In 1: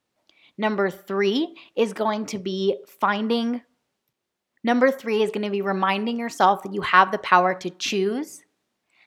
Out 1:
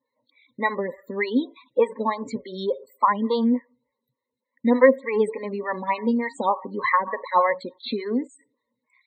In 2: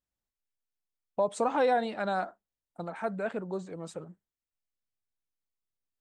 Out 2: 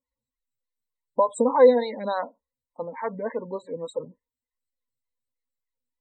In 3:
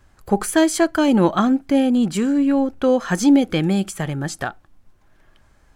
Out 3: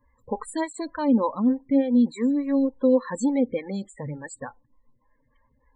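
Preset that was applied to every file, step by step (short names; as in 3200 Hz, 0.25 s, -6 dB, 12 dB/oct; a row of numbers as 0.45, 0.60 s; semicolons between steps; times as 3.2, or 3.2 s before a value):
ripple EQ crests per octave 1, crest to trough 14 dB; loudest bins only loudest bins 32; photocell phaser 3.4 Hz; match loudness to -24 LUFS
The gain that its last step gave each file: 0.0, +6.5, -7.0 dB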